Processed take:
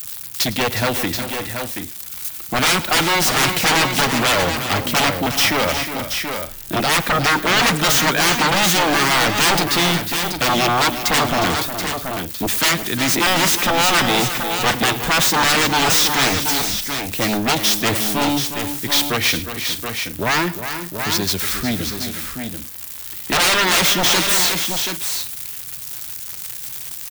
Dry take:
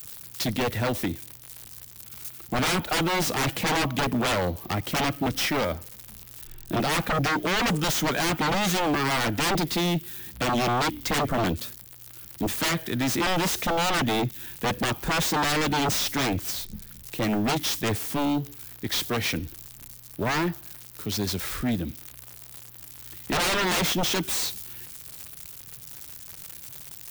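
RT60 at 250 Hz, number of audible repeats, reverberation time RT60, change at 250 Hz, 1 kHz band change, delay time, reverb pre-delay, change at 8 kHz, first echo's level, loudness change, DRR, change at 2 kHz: no reverb audible, 5, no reverb audible, +4.5 dB, +8.5 dB, 108 ms, no reverb audible, +11.5 dB, −18.0 dB, +8.5 dB, no reverb audible, +10.5 dB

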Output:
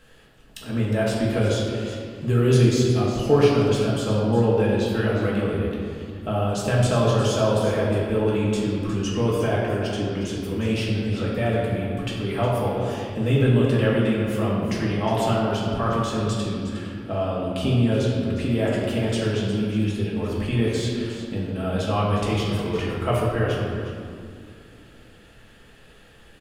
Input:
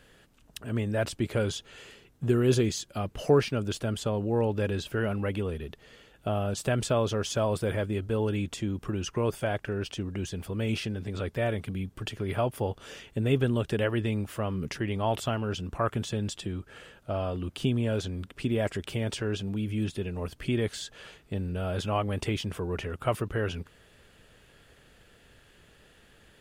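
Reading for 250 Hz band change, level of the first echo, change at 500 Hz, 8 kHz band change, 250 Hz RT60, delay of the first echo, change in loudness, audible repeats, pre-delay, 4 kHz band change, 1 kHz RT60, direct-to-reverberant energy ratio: +8.0 dB, −11.0 dB, +7.5 dB, +3.5 dB, 3.5 s, 360 ms, +7.5 dB, 1, 4 ms, +6.0 dB, 2.2 s, −5.5 dB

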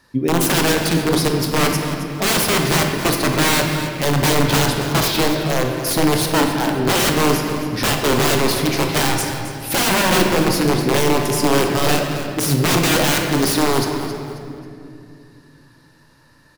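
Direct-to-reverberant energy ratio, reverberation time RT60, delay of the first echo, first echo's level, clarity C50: 2.0 dB, 2.5 s, 269 ms, −12.5 dB, 3.0 dB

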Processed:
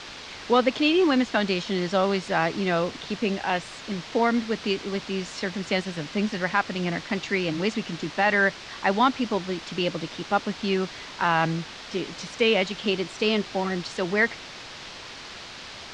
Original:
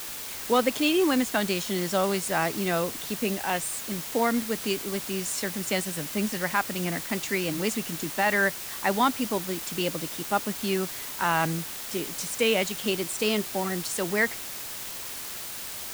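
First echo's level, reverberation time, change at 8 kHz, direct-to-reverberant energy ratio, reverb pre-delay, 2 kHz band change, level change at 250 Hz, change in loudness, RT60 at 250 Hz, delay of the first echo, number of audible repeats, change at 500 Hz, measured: no echo audible, no reverb audible, −11.5 dB, no reverb audible, no reverb audible, +2.5 dB, +2.5 dB, +2.0 dB, no reverb audible, no echo audible, no echo audible, +2.5 dB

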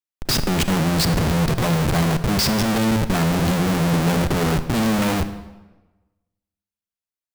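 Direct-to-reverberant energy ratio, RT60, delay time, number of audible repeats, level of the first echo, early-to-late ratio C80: 10.5 dB, 1.2 s, no echo audible, no echo audible, no echo audible, 14.0 dB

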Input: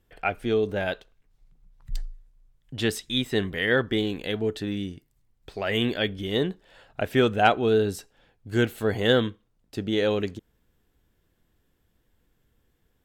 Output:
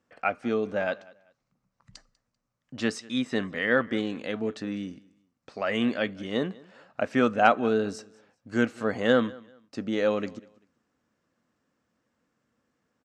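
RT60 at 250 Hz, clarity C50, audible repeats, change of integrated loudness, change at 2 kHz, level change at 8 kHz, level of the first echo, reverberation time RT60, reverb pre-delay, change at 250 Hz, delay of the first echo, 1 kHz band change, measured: no reverb audible, no reverb audible, 2, −2.0 dB, −1.0 dB, −4.5 dB, −23.0 dB, no reverb audible, no reverb audible, −0.5 dB, 195 ms, 0.0 dB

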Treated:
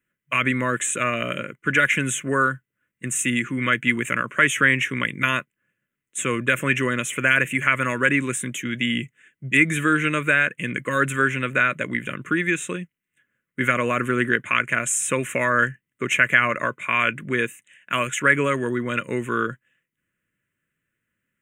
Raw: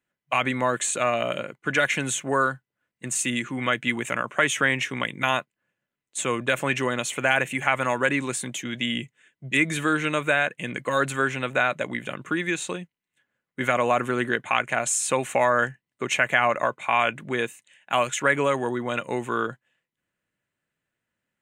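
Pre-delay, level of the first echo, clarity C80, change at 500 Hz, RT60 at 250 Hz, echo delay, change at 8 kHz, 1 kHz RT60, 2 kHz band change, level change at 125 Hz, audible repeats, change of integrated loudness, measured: no reverb audible, no echo audible, no reverb audible, −1.0 dB, no reverb audible, no echo audible, +1.5 dB, no reverb audible, +5.0 dB, +5.0 dB, no echo audible, +3.0 dB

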